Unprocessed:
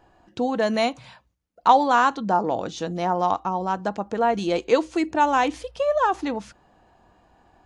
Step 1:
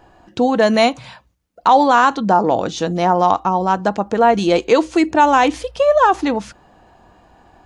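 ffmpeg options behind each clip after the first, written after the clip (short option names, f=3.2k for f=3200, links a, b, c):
-af "alimiter=level_in=10dB:limit=-1dB:release=50:level=0:latency=1,volume=-1.5dB"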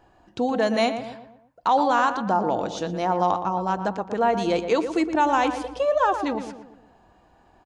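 -filter_complex "[0:a]asplit=2[a][b];[b]adelay=118,lowpass=f=1.8k:p=1,volume=-8.5dB,asplit=2[c][d];[d]adelay=118,lowpass=f=1.8k:p=1,volume=0.48,asplit=2[e][f];[f]adelay=118,lowpass=f=1.8k:p=1,volume=0.48,asplit=2[g][h];[h]adelay=118,lowpass=f=1.8k:p=1,volume=0.48,asplit=2[i][j];[j]adelay=118,lowpass=f=1.8k:p=1,volume=0.48[k];[a][c][e][g][i][k]amix=inputs=6:normalize=0,volume=-8.5dB"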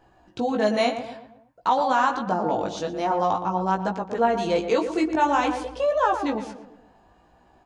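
-af "flanger=delay=15.5:depth=4.6:speed=0.52,volume=2.5dB"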